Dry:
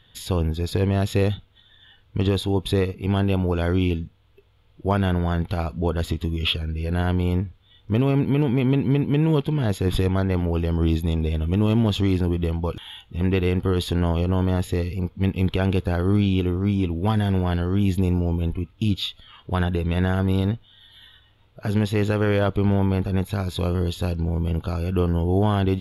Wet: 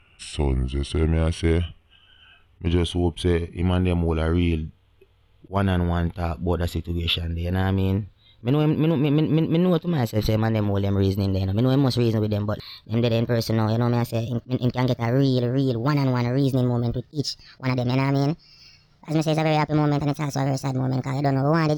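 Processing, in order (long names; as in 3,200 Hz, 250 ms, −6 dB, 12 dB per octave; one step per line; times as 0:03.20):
gliding playback speed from 78% → 159%
level that may rise only so fast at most 380 dB per second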